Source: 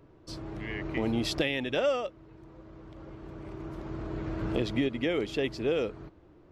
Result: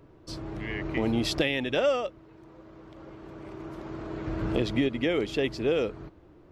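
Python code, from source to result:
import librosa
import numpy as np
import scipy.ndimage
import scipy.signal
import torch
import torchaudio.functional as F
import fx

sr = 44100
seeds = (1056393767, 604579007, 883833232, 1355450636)

y = fx.low_shelf(x, sr, hz=140.0, db=-10.0, at=(2.19, 4.27))
y = F.gain(torch.from_numpy(y), 2.5).numpy()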